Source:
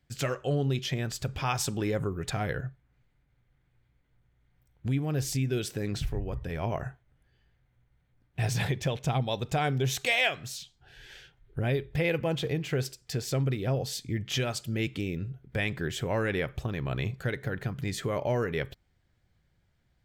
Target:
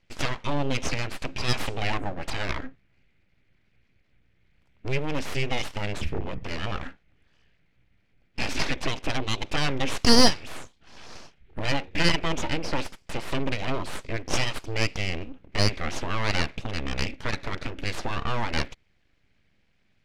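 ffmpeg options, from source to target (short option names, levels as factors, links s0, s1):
-af "equalizer=f=100:t=o:w=0.67:g=-10,equalizer=f=1000:t=o:w=0.67:g=-11,equalizer=f=2500:t=o:w=0.67:g=10,aeval=exprs='abs(val(0))':c=same,adynamicsmooth=sensitivity=1.5:basefreq=6200,volume=2.11"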